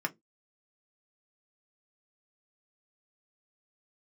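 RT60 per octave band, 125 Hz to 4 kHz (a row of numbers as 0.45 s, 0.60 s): 0.25 s, 0.25 s, 0.20 s, 0.10 s, 0.10 s, 0.10 s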